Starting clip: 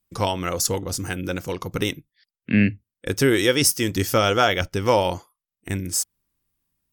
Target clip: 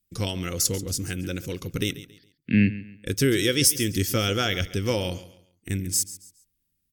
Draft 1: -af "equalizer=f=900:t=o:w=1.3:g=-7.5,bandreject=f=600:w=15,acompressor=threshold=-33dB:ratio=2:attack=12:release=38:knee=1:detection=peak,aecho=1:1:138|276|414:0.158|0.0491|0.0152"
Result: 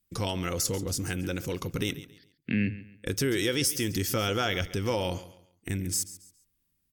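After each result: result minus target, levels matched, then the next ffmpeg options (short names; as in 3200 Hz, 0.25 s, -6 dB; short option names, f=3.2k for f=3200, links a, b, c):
compressor: peak gain reduction +9.5 dB; 1000 Hz band +5.5 dB
-af "equalizer=f=900:t=o:w=1.3:g=-7.5,bandreject=f=600:w=15,aecho=1:1:138|276|414:0.158|0.0491|0.0152"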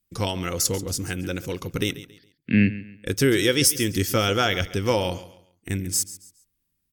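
1000 Hz band +5.0 dB
-af "equalizer=f=900:t=o:w=1.3:g=-17,bandreject=f=600:w=15,aecho=1:1:138|276|414:0.158|0.0491|0.0152"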